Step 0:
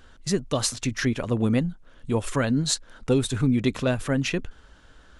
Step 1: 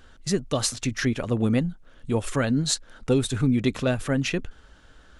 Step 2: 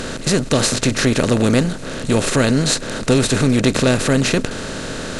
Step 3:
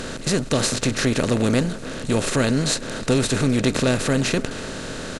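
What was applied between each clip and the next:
notch filter 1,000 Hz, Q 16
compressor on every frequency bin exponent 0.4; level +3.5 dB
far-end echo of a speakerphone 300 ms, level −16 dB; level −4.5 dB

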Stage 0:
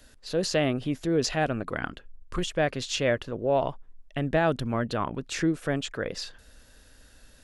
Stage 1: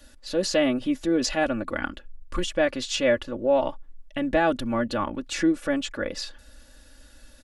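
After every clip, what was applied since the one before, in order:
comb filter 3.5 ms, depth 83%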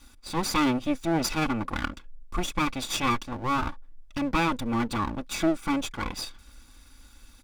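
lower of the sound and its delayed copy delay 0.83 ms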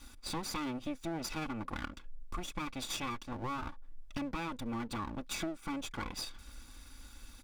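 downward compressor 6 to 1, threshold −36 dBFS, peak gain reduction 16 dB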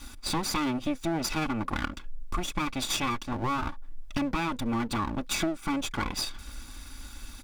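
notch filter 500 Hz, Q 12
level +9 dB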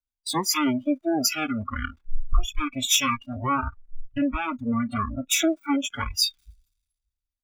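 converter with a step at zero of −35.5 dBFS
noise reduction from a noise print of the clip's start 29 dB
multiband upward and downward expander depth 100%
level +3.5 dB

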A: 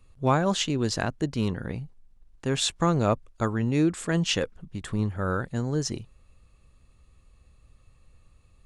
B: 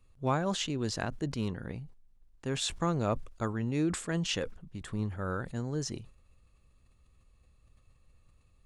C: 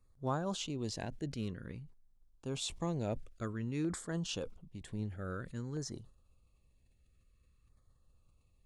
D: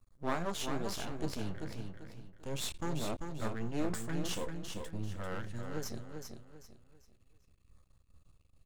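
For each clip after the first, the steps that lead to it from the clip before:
level that may fall only so fast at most 110 dB per second; level −7 dB
auto-filter notch saw down 0.52 Hz 620–3,000 Hz; level −5.5 dB
flanger 0.56 Hz, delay 8.2 ms, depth 7.4 ms, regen +59%; half-wave rectification; repeating echo 392 ms, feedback 31%, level −6 dB; level +9.5 dB

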